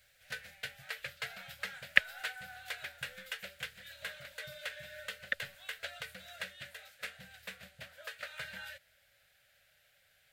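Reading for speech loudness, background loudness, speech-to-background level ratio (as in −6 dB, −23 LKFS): −31.5 LKFS, −44.0 LKFS, 12.5 dB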